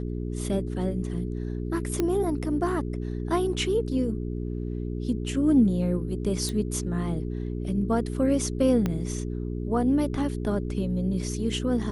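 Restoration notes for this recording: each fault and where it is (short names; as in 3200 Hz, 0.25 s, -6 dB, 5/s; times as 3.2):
hum 60 Hz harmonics 7 -31 dBFS
2 pop -12 dBFS
6.49 pop -17 dBFS
8.86 pop -14 dBFS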